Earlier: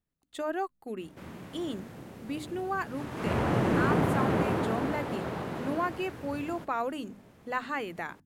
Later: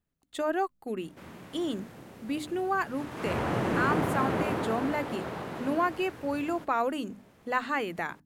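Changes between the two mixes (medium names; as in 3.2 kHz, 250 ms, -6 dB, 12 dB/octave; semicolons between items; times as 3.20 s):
speech +3.5 dB; background: add bass shelf 360 Hz -4.5 dB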